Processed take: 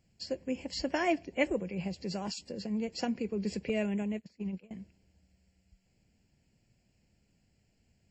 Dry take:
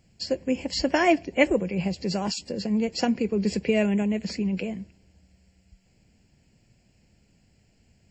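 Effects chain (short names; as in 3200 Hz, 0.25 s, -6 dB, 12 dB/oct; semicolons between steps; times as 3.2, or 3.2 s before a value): 3.69–4.71 gate -26 dBFS, range -24 dB; gain -9 dB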